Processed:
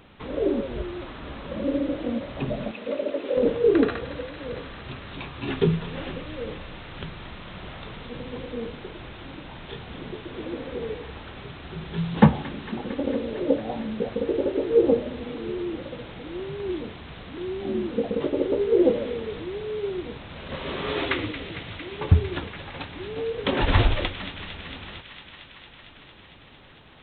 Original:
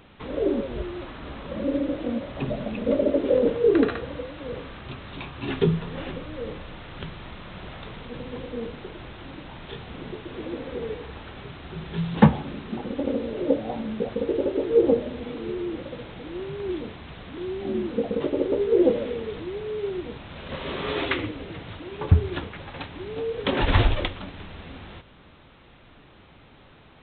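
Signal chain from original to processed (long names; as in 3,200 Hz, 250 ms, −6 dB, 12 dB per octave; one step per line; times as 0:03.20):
0:02.71–0:03.37: high-pass filter 820 Hz 6 dB per octave
on a send: delay with a high-pass on its return 227 ms, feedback 82%, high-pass 1,800 Hz, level −9 dB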